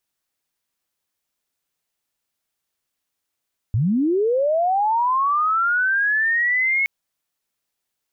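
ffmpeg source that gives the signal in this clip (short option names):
-f lavfi -i "aevalsrc='pow(10,(-16-0.5*t/3.12)/20)*sin(2*PI*(95*t+2105*t*t/(2*3.12)))':d=3.12:s=44100"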